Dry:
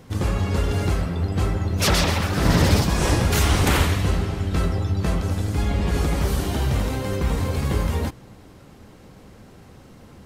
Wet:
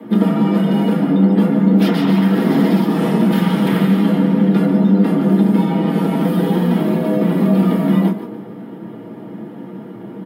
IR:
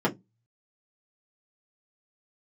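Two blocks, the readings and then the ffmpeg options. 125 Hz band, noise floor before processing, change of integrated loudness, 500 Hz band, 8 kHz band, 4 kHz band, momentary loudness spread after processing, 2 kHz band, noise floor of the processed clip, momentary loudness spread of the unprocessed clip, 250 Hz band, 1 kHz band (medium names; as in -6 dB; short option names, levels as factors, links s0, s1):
+2.5 dB, -47 dBFS, +7.5 dB, +7.5 dB, under -10 dB, -4.0 dB, 19 LU, -1.0 dB, -33 dBFS, 6 LU, +15.0 dB, +3.5 dB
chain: -filter_complex "[0:a]bandreject=f=50:t=h:w=6,bandreject=f=100:t=h:w=6,afreqshift=110,highshelf=f=5000:t=q:w=1.5:g=-6.5,acrossover=split=350|5600[s0][s1][s2];[s0]acompressor=threshold=0.0282:ratio=4[s3];[s1]acompressor=threshold=0.0224:ratio=4[s4];[s2]acompressor=threshold=0.00631:ratio=4[s5];[s3][s4][s5]amix=inputs=3:normalize=0,aemphasis=mode=production:type=75fm,acrossover=split=5700[s6][s7];[s6]adynamicsmooth=sensitivity=5.5:basefreq=3000[s8];[s7]flanger=delay=22.5:depth=7.4:speed=2[s9];[s8][s9]amix=inputs=2:normalize=0,asplit=4[s10][s11][s12][s13];[s11]adelay=146,afreqshift=63,volume=0.266[s14];[s12]adelay=292,afreqshift=126,volume=0.0881[s15];[s13]adelay=438,afreqshift=189,volume=0.0288[s16];[s10][s14][s15][s16]amix=inputs=4:normalize=0[s17];[1:a]atrim=start_sample=2205[s18];[s17][s18]afir=irnorm=-1:irlink=0,volume=0.596"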